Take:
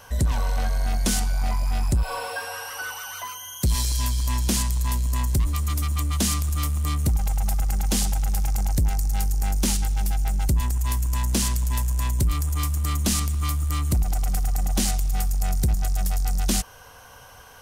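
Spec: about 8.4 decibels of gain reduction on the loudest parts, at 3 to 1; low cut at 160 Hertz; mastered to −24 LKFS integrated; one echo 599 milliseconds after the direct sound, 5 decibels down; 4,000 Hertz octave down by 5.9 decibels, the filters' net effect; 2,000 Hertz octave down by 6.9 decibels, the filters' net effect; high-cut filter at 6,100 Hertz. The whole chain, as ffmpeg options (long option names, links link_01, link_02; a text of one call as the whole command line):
ffmpeg -i in.wav -af "highpass=160,lowpass=6100,equalizer=frequency=2000:width_type=o:gain=-9,equalizer=frequency=4000:width_type=o:gain=-4,acompressor=threshold=-35dB:ratio=3,aecho=1:1:599:0.562,volume=13.5dB" out.wav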